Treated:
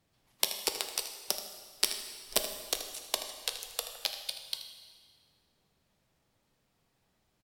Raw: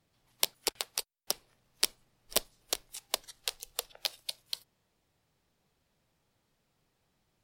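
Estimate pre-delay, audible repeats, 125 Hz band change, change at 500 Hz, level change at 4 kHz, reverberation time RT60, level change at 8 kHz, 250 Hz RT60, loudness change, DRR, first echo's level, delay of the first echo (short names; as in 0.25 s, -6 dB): 5 ms, 1, n/a, +1.5 dB, +1.0 dB, 1.8 s, +1.0 dB, 1.9 s, +1.0 dB, 5.0 dB, -12.0 dB, 79 ms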